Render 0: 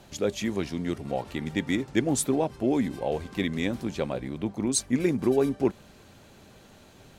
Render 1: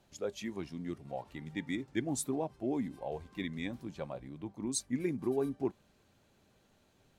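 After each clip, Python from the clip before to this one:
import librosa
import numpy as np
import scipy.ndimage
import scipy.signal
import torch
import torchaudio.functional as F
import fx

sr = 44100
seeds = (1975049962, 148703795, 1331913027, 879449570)

y = fx.noise_reduce_blind(x, sr, reduce_db=7)
y = y * 10.0 ** (-9.0 / 20.0)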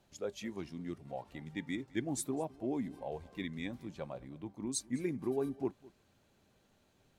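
y = x + 10.0 ** (-22.0 / 20.0) * np.pad(x, (int(209 * sr / 1000.0), 0))[:len(x)]
y = y * 10.0 ** (-2.0 / 20.0)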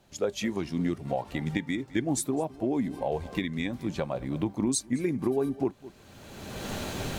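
y = fx.recorder_agc(x, sr, target_db=-25.5, rise_db_per_s=29.0, max_gain_db=30)
y = y * 10.0 ** (6.5 / 20.0)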